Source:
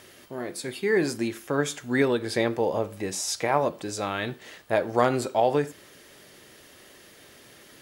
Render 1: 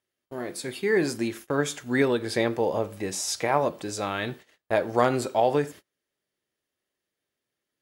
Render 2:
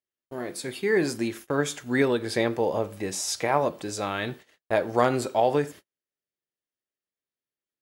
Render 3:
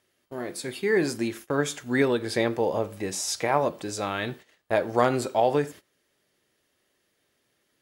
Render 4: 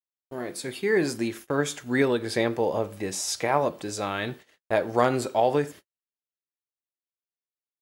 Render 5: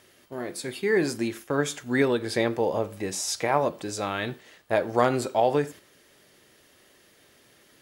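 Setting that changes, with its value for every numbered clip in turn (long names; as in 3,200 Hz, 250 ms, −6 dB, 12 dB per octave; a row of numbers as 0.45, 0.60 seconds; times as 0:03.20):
noise gate, range: −34, −47, −21, −59, −7 decibels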